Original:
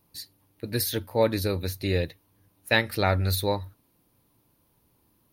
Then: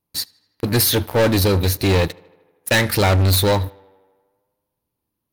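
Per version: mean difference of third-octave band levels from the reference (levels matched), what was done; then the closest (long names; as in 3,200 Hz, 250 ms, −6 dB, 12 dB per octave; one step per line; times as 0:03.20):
6.0 dB: leveller curve on the samples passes 5
on a send: tape delay 79 ms, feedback 74%, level −24 dB, low-pass 4,200 Hz
on the sum: level −3 dB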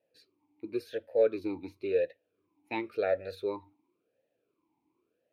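10.5 dB: parametric band 670 Hz +11 dB 0.48 octaves
formant filter swept between two vowels e-u 0.94 Hz
level +2 dB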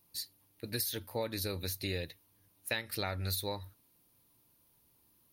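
4.5 dB: high-shelf EQ 2,200 Hz +9.5 dB
downward compressor 6 to 1, threshold −24 dBFS, peak gain reduction 11.5 dB
level −8 dB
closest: third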